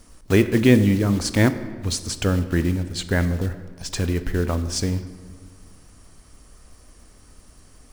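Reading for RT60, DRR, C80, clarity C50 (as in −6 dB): 1.7 s, 11.0 dB, 13.5 dB, 12.5 dB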